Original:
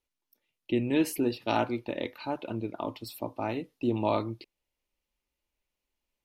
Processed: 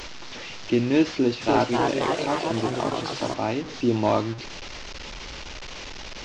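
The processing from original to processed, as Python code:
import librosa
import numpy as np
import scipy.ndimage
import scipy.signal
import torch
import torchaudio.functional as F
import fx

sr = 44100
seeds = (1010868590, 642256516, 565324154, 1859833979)

y = fx.delta_mod(x, sr, bps=32000, step_db=-36.5)
y = fx.echo_pitch(y, sr, ms=303, semitones=2, count=3, db_per_echo=-3.0, at=(1.11, 3.34))
y = y * librosa.db_to_amplitude(6.0)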